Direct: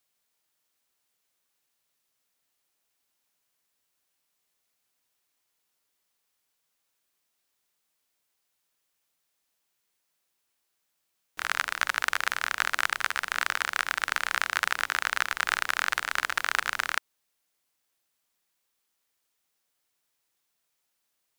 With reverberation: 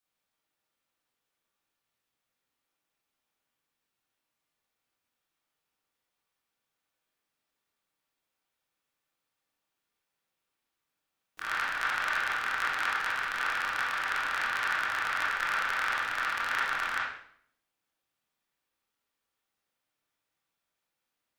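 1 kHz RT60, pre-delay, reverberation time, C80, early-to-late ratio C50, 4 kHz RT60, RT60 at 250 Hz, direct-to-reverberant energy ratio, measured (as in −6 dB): 0.60 s, 20 ms, 0.65 s, 4.5 dB, 0.0 dB, 0.55 s, 0.80 s, −8.0 dB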